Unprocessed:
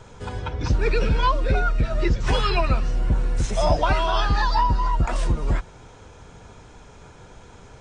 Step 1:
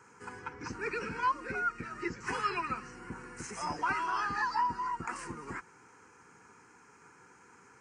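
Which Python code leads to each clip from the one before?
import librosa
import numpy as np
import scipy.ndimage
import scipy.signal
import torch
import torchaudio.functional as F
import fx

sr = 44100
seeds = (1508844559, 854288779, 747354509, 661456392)

y = scipy.signal.sosfilt(scipy.signal.butter(2, 320.0, 'highpass', fs=sr, output='sos'), x)
y = fx.fixed_phaser(y, sr, hz=1500.0, stages=4)
y = F.gain(torch.from_numpy(y), -4.5).numpy()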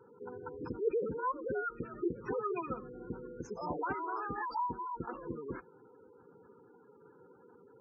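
y = fx.graphic_eq(x, sr, hz=(500, 1000, 2000, 8000), db=(10, -5, -9, -11))
y = fx.spec_gate(y, sr, threshold_db=-15, keep='strong')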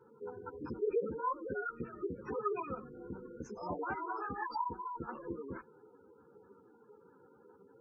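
y = fx.ensemble(x, sr)
y = F.gain(torch.from_numpy(y), 1.5).numpy()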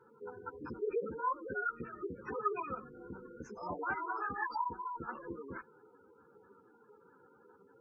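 y = fx.peak_eq(x, sr, hz=1700.0, db=8.5, octaves=1.4)
y = F.gain(torch.from_numpy(y), -3.0).numpy()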